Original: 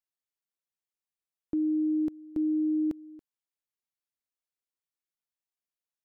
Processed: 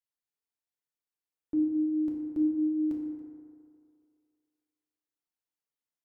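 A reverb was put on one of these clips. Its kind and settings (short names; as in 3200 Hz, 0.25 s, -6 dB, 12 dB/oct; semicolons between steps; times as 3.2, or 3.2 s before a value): FDN reverb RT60 2.3 s, low-frequency decay 0.8×, high-frequency decay 0.35×, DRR -2 dB; gain -6 dB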